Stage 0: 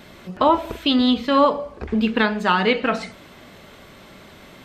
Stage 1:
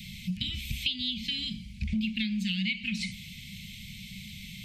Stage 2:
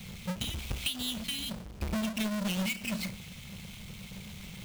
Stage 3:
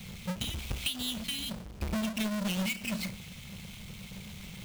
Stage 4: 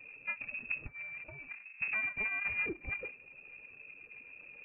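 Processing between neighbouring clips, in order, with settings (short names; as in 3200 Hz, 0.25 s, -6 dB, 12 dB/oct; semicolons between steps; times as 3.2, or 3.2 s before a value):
Chebyshev band-stop 210–2200 Hz, order 5; compressor 8:1, threshold -33 dBFS, peak gain reduction 15 dB; gain +5.5 dB
half-waves squared off; gain -6 dB
nothing audible
per-bin expansion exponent 1.5; inverted band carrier 2600 Hz; mismatched tape noise reduction encoder only; gain -1.5 dB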